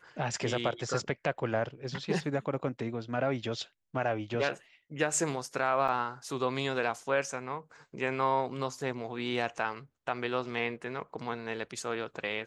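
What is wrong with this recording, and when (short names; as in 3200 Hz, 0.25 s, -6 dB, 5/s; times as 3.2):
5.88–5.89 gap 5.8 ms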